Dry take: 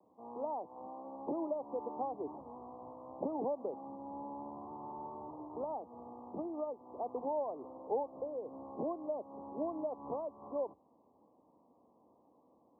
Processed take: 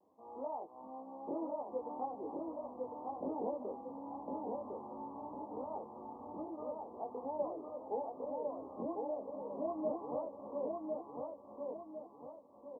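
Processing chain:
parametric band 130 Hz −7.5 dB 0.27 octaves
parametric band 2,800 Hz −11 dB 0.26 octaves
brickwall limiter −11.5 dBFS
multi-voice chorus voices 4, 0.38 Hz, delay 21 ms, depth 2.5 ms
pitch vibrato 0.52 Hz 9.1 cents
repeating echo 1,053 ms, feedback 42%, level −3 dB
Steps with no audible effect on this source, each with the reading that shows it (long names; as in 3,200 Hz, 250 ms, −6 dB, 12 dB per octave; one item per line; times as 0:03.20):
parametric band 2,800 Hz: nothing at its input above 1,300 Hz
brickwall limiter −11.5 dBFS: peak of its input −24.0 dBFS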